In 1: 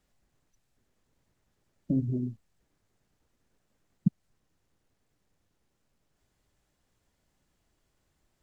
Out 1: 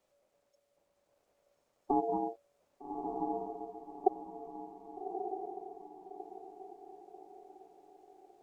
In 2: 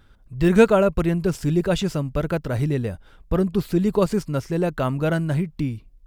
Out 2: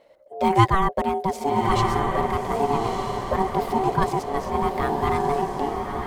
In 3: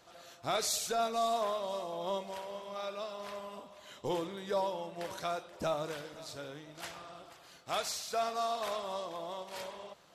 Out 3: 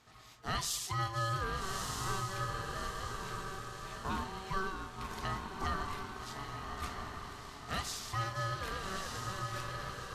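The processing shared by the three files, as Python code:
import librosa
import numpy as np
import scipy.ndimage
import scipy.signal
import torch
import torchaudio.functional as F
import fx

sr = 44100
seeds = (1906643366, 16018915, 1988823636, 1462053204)

y = fx.echo_diffused(x, sr, ms=1227, feedback_pct=42, wet_db=-3.5)
y = y * np.sin(2.0 * np.pi * 570.0 * np.arange(len(y)) / sr)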